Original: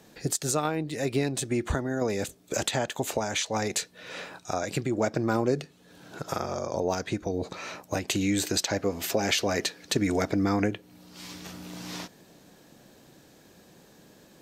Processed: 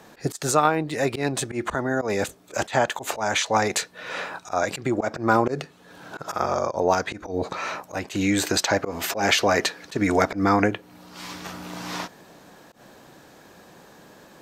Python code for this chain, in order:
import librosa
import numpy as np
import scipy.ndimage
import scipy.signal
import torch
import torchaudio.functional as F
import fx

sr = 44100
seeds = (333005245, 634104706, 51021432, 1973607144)

y = fx.auto_swell(x, sr, attack_ms=105.0)
y = fx.peak_eq(y, sr, hz=1100.0, db=9.5, octaves=2.0)
y = y * 10.0 ** (2.5 / 20.0)